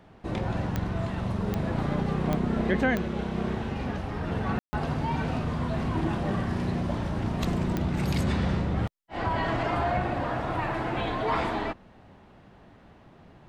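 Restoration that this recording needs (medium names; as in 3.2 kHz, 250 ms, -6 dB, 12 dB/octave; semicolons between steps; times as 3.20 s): de-click; room tone fill 4.59–4.73 s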